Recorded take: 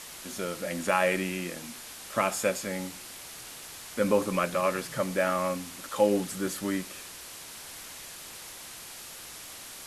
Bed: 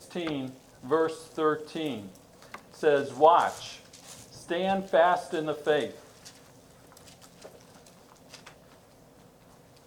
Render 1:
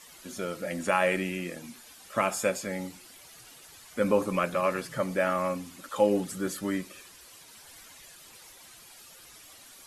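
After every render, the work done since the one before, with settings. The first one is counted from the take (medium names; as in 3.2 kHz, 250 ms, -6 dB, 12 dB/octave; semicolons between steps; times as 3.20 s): noise reduction 11 dB, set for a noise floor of -44 dBFS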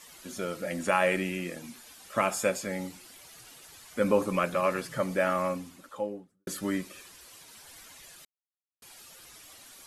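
5.36–6.47 s: studio fade out; 8.25–8.82 s: mute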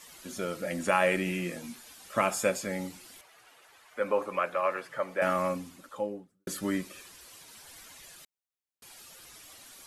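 1.25–1.75 s: doubling 17 ms -6.5 dB; 3.21–5.22 s: three-band isolator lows -17 dB, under 430 Hz, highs -13 dB, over 2.7 kHz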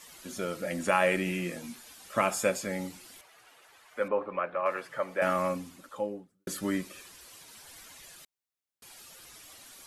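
4.08–4.66 s: distance through air 460 m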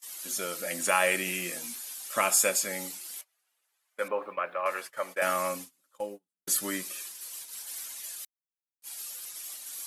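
RIAA curve recording; gate -40 dBFS, range -26 dB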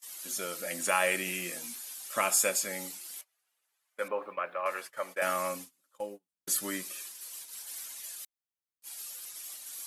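trim -2.5 dB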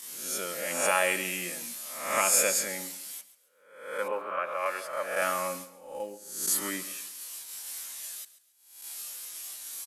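reverse spectral sustain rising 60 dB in 0.70 s; feedback delay 137 ms, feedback 32%, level -16.5 dB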